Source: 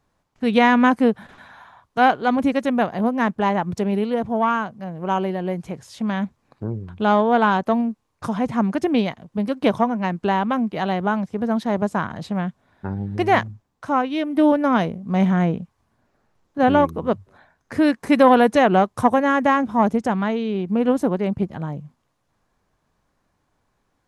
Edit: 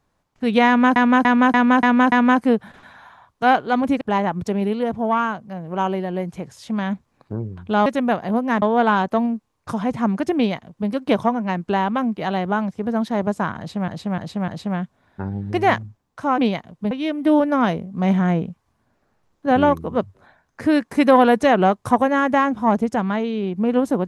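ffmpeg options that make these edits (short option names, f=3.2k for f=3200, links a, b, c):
-filter_complex "[0:a]asplit=14[a][b][c][d][e][f][g][h][i][j][k][l][m][n];[a]atrim=end=0.962[o];[b]atrim=start=0.668:end=0.962[p];[c]atrim=start=0.668:end=0.962[q];[d]atrim=start=0.668:end=0.962[r];[e]atrim=start=0.668:end=0.962[s];[f]atrim=start=0.668:end=2.562[t];[g]atrim=start=3.318:end=7.172[u];[h]atrim=start=2.558:end=3.322[v];[i]atrim=start=7.168:end=12.432[w];[j]atrim=start=12.128:end=12.432[x];[k]atrim=start=12.128:end=12.432[y];[l]atrim=start=12.128:end=14.032[z];[m]atrim=start=8.908:end=9.442[aa];[n]atrim=start=14.028[ab];[o][p]acrossfade=d=0.004:c1=hsin:c2=hsin[ac];[ac][q]acrossfade=d=0.004:c1=hsin:c2=hsin[ad];[ad][r]acrossfade=d=0.004:c1=hsin:c2=hsin[ae];[ae][s]acrossfade=d=0.004:c1=hsin:c2=hsin[af];[af][t]acrossfade=d=0.004:c1=hsin:c2=hsin[ag];[ag][u]acrossfade=d=0.004:c1=hsin:c2=hsin[ah];[ah][v]acrossfade=d=0.004:c1=hsin:c2=hsin[ai];[ai][w]acrossfade=d=0.004:c1=hsin:c2=hsin[aj];[aj][x]acrossfade=d=0.004:c1=hsin:c2=hsin[ak];[ak][y]acrossfade=d=0.004:c1=hsin:c2=hsin[al];[al][z]acrossfade=d=0.004:c1=hsin:c2=hsin[am];[am][aa]acrossfade=d=0.004:c1=hsin:c2=hsin[an];[an][ab]acrossfade=d=0.004:c1=hsin:c2=hsin"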